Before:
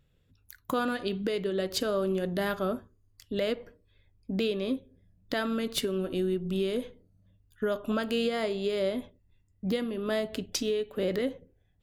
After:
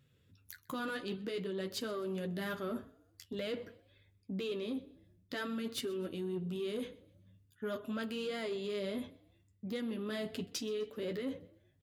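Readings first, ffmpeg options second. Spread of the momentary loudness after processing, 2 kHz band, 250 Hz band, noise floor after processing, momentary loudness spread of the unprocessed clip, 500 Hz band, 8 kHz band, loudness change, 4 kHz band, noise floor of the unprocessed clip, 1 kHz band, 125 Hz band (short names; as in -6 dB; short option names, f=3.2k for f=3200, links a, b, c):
10 LU, -7.0 dB, -7.5 dB, -71 dBFS, 7 LU, -9.0 dB, -8.5 dB, -8.5 dB, -8.0 dB, -68 dBFS, -9.5 dB, -7.5 dB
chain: -filter_complex "[0:a]flanger=delay=7.6:depth=7.3:regen=-31:speed=0.51:shape=triangular,equalizer=f=720:w=1.6:g=-7,areverse,acompressor=threshold=-40dB:ratio=6,areverse,asoftclip=type=tanh:threshold=-34.5dB,highpass=88,asplit=4[a][b][c][d];[b]adelay=127,afreqshift=30,volume=-22.5dB[e];[c]adelay=254,afreqshift=60,volume=-30dB[f];[d]adelay=381,afreqshift=90,volume=-37.6dB[g];[a][e][f][g]amix=inputs=4:normalize=0,volume=5.5dB"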